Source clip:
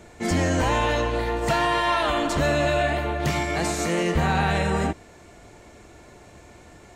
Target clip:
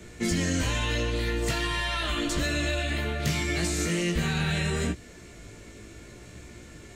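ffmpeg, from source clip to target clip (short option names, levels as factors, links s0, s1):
-filter_complex "[0:a]flanger=delay=16.5:depth=2.1:speed=0.78,acrossover=split=120|2400[s0][s1][s2];[s0]acompressor=threshold=0.0141:ratio=4[s3];[s1]acompressor=threshold=0.0251:ratio=4[s4];[s2]acompressor=threshold=0.0126:ratio=4[s5];[s3][s4][s5]amix=inputs=3:normalize=0,equalizer=f=810:t=o:w=1.1:g=-13.5,volume=2.24"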